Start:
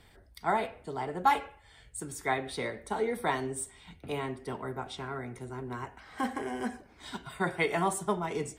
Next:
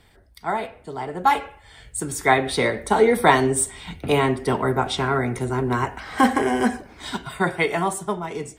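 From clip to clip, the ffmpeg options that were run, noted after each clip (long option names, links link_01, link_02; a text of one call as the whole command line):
ffmpeg -i in.wav -af "dynaudnorm=framelen=270:gausssize=13:maxgain=14dB,volume=3dB" out.wav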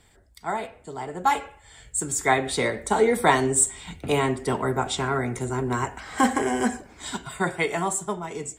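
ffmpeg -i in.wav -af "equalizer=frequency=7400:width_type=o:width=0.28:gain=15,volume=-3.5dB" out.wav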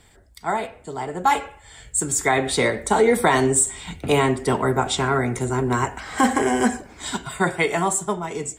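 ffmpeg -i in.wav -af "alimiter=level_in=11dB:limit=-1dB:release=50:level=0:latency=1,volume=-6.5dB" out.wav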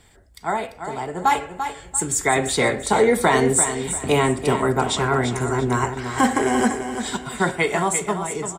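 ffmpeg -i in.wav -af "aecho=1:1:342|684|1026|1368:0.376|0.113|0.0338|0.0101" out.wav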